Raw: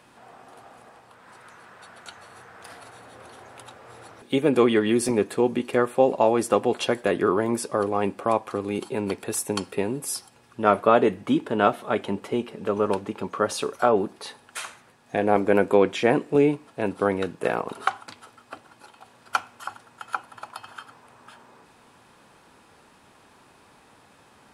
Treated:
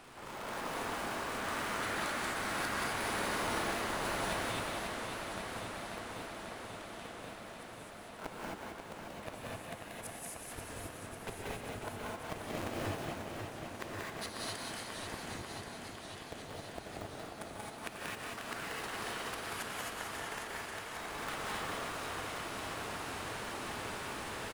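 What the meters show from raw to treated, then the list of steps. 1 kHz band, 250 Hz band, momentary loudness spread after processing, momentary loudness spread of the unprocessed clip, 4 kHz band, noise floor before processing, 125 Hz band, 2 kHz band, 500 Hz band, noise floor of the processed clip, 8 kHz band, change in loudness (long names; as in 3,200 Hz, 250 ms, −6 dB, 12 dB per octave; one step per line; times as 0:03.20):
−11.5 dB, −18.0 dB, 11 LU, 16 LU, −4.5 dB, −56 dBFS, −10.5 dB, −5.5 dB, −19.5 dB, −49 dBFS, −7.0 dB, −16.0 dB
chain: sub-harmonics by changed cycles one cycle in 2, inverted
dynamic equaliser 5,200 Hz, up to −4 dB, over −46 dBFS, Q 2.5
automatic gain control gain up to 4.5 dB
brickwall limiter −12 dBFS, peak gain reduction 10 dB
downward compressor 4 to 1, threshold −38 dBFS, peak gain reduction 18 dB
gate with flip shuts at −30 dBFS, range −25 dB
on a send: echo with shifted repeats 184 ms, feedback 46%, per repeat +43 Hz, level −3.5 dB
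on the sum: reverb whose tail is shaped and stops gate 290 ms rising, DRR −4 dB
feedback echo with a swinging delay time 540 ms, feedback 77%, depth 113 cents, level −6.5 dB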